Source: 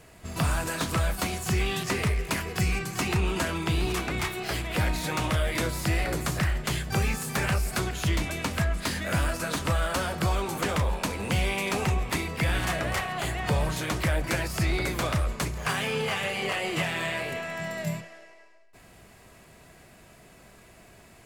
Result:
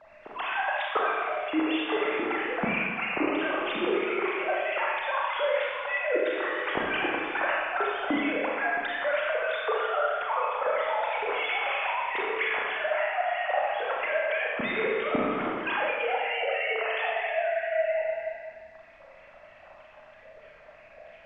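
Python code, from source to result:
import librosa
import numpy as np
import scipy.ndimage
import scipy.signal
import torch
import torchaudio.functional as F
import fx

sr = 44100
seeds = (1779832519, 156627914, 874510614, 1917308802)

y = fx.sine_speech(x, sr)
y = fx.harmonic_tremolo(y, sr, hz=3.1, depth_pct=100, crossover_hz=1600.0)
y = fx.dmg_noise_colour(y, sr, seeds[0], colour='pink', level_db=-70.0)
y = fx.air_absorb(y, sr, metres=160.0)
y = fx.rev_schroeder(y, sr, rt60_s=1.7, comb_ms=28, drr_db=-3.5)
y = fx.rider(y, sr, range_db=10, speed_s=0.5)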